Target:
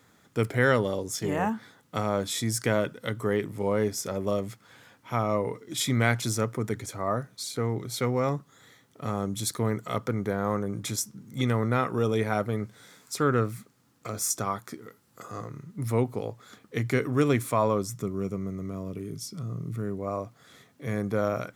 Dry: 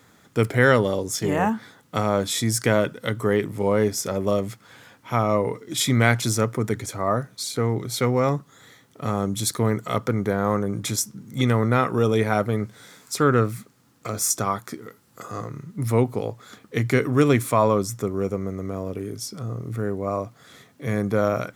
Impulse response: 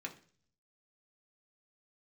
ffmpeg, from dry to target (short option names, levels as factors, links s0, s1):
-filter_complex "[0:a]asettb=1/sr,asplit=3[s0][s1][s2];[s0]atrim=end=17.944[s3];[s1]atrim=start=17.94:end=19.99,asetpts=PTS-STARTPTS,afade=t=in:d=0.004:c=qsin,afade=t=out:st=2.046:d=0.004:c=qsin,equalizer=f=160:t=o:w=0.33:g=11,equalizer=f=500:t=o:w=0.33:g=-6,equalizer=f=800:t=o:w=0.33:g=-9,equalizer=f=1600:t=o:w=0.33:g=-6[s4];[s2]atrim=start=19.986[s5];[s3][s4]acrossfade=d=0.004:c1=hsin:c2=qsin[s6];[s6][s5]acrossfade=d=0.004:c1=qsin:c2=hsin,volume=0.531"